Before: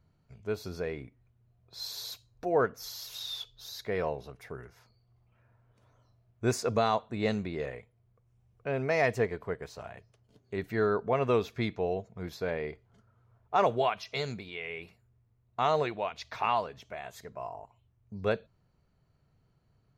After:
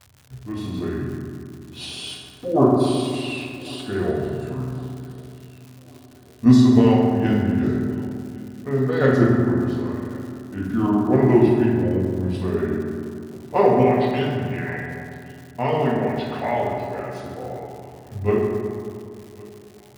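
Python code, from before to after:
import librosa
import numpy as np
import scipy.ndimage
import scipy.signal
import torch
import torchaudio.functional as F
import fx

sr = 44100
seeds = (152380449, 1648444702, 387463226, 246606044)

p1 = scipy.signal.sosfilt(scipy.signal.butter(2, 87.0, 'highpass', fs=sr, output='sos'), x)
p2 = fx.low_shelf(p1, sr, hz=340.0, db=7.0)
p3 = fx.level_steps(p2, sr, step_db=23)
p4 = p2 + (p3 * librosa.db_to_amplitude(-1.0))
p5 = fx.formant_shift(p4, sr, semitones=-5)
p6 = fx.rev_fdn(p5, sr, rt60_s=2.2, lf_ratio=1.3, hf_ratio=0.45, size_ms=24.0, drr_db=-4.5)
p7 = fx.dmg_crackle(p6, sr, seeds[0], per_s=200.0, level_db=-35.0)
p8 = p7 + fx.echo_feedback(p7, sr, ms=1105, feedback_pct=50, wet_db=-23, dry=0)
y = p8 * librosa.db_to_amplitude(-1.0)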